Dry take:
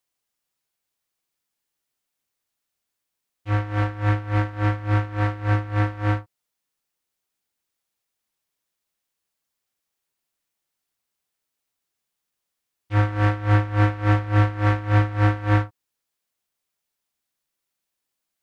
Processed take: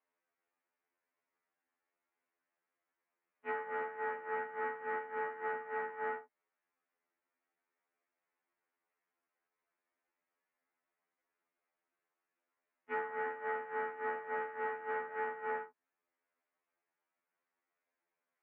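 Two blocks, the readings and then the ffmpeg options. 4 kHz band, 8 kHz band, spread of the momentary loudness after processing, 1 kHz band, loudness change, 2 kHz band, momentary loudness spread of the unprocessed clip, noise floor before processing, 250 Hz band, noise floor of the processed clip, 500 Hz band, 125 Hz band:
below −20 dB, can't be measured, 3 LU, −10.0 dB, −17.0 dB, −11.0 dB, 6 LU, −82 dBFS, −30.5 dB, below −85 dBFS, −8.5 dB, below −40 dB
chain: -af "highpass=frequency=350:width_type=q:width=0.5412,highpass=frequency=350:width_type=q:width=1.307,lowpass=frequency=2300:width_type=q:width=0.5176,lowpass=frequency=2300:width_type=q:width=0.7071,lowpass=frequency=2300:width_type=q:width=1.932,afreqshift=-78,acompressor=threshold=-36dB:ratio=8,afftfilt=real='re*2*eq(mod(b,4),0)':imag='im*2*eq(mod(b,4),0)':win_size=2048:overlap=0.75,volume=3.5dB"

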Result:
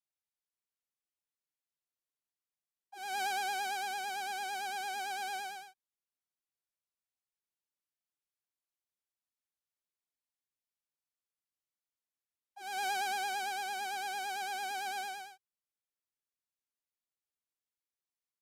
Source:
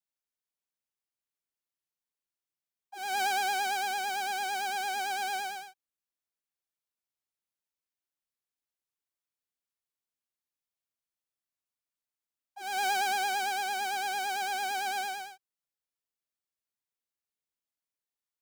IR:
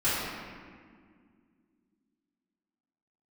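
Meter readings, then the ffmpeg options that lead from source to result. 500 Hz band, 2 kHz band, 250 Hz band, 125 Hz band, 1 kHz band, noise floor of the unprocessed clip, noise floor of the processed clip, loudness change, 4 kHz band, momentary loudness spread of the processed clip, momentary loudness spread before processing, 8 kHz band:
−5.5 dB, −5.5 dB, −5.5 dB, can't be measured, −5.5 dB, below −85 dBFS, below −85 dBFS, −5.5 dB, −5.5 dB, 12 LU, 12 LU, −5.5 dB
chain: -af "aresample=32000,aresample=44100,volume=-5.5dB"

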